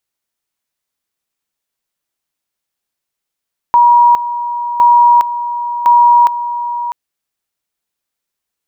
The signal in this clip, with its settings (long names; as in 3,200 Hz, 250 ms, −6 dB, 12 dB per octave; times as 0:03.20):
tone at two levels in turn 957 Hz −4 dBFS, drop 12 dB, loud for 0.41 s, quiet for 0.65 s, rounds 3